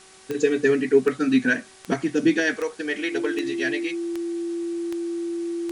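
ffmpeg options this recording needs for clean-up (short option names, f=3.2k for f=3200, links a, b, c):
-af "adeclick=t=4,bandreject=f=379.7:t=h:w=4,bandreject=f=759.4:t=h:w=4,bandreject=f=1.1391k:t=h:w=4,bandreject=f=1.5188k:t=h:w=4,bandreject=f=1.8985k:t=h:w=4,bandreject=f=2.2782k:t=h:w=4,bandreject=f=340:w=30,afftdn=nr=24:nf=-44"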